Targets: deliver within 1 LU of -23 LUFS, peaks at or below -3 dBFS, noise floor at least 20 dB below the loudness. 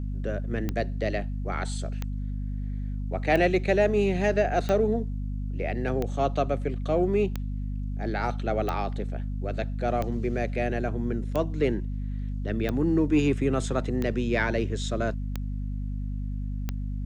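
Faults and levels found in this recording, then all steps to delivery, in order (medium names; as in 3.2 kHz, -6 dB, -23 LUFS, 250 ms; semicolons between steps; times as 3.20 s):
clicks found 13; hum 50 Hz; highest harmonic 250 Hz; hum level -28 dBFS; loudness -28.0 LUFS; peak level -11.0 dBFS; loudness target -23.0 LUFS
-> de-click; de-hum 50 Hz, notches 5; trim +5 dB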